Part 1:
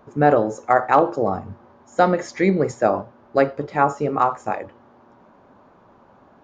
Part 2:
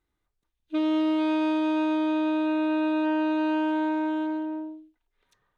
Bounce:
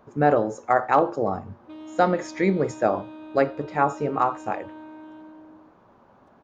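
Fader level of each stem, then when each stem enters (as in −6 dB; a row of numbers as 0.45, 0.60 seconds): −3.5, −16.0 decibels; 0.00, 0.95 seconds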